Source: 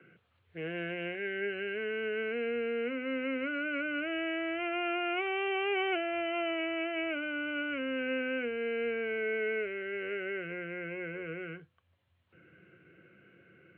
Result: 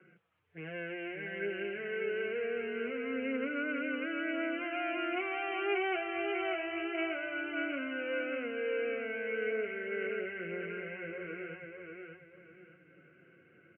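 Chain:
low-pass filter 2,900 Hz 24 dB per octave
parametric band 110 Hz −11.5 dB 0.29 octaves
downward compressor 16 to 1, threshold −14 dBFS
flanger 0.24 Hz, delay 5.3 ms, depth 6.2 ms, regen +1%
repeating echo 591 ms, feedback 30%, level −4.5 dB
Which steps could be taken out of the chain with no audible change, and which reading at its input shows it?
downward compressor, threshold −14 dBFS: peak of its input −22.0 dBFS

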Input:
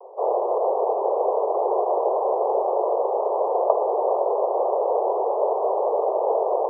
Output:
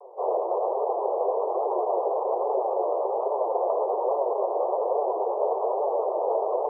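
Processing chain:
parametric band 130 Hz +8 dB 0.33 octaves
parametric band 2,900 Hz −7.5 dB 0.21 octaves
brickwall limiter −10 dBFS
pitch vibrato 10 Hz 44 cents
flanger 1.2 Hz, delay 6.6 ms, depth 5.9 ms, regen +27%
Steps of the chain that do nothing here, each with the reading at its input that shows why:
parametric band 130 Hz: nothing at its input below 300 Hz
parametric band 2,900 Hz: nothing at its input above 1,200 Hz

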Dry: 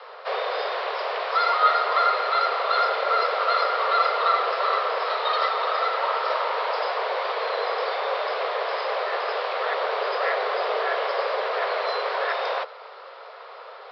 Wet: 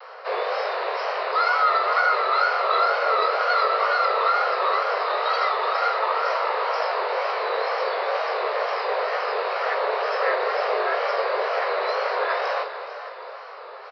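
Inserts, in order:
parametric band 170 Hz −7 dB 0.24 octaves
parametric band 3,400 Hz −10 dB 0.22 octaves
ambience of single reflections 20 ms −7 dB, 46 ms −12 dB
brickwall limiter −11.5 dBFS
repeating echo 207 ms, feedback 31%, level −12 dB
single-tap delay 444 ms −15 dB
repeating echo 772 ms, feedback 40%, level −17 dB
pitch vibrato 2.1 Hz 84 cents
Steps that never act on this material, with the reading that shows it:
parametric band 170 Hz: nothing at its input below 340 Hz

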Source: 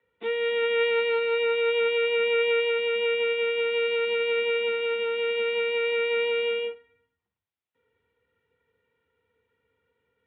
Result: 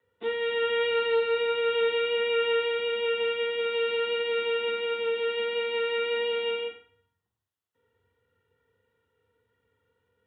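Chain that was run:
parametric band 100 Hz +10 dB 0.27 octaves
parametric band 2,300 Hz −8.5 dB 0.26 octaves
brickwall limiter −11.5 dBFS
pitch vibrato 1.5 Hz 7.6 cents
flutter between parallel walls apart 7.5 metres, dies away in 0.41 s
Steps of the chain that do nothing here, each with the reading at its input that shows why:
brickwall limiter −11.5 dBFS: peak of its input −17.0 dBFS

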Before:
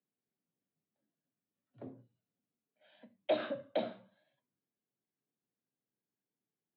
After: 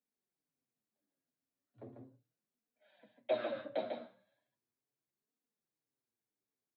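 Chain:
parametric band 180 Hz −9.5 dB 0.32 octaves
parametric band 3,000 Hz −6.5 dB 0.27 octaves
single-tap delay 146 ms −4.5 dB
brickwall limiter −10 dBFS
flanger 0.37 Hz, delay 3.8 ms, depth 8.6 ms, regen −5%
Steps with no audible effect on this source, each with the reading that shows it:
brickwall limiter −10 dBFS: peak of its input −20.0 dBFS

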